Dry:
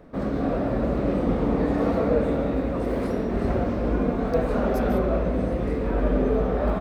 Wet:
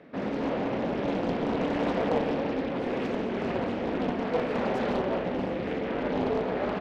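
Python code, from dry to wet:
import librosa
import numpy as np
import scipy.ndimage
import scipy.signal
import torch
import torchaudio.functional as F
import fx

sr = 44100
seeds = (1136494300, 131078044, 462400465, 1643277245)

p1 = scipy.signal.sosfilt(scipy.signal.butter(2, 3400.0, 'lowpass', fs=sr, output='sos'), x)
p2 = 10.0 ** (-27.5 / 20.0) * np.tanh(p1 / 10.0 ** (-27.5 / 20.0))
p3 = p1 + (p2 * 10.0 ** (-7.0 / 20.0))
p4 = scipy.signal.sosfilt(scipy.signal.butter(2, 170.0, 'highpass', fs=sr, output='sos'), p3)
p5 = fx.high_shelf_res(p4, sr, hz=1600.0, db=6.5, q=1.5)
p6 = fx.doppler_dist(p5, sr, depth_ms=0.76)
y = p6 * 10.0 ** (-4.5 / 20.0)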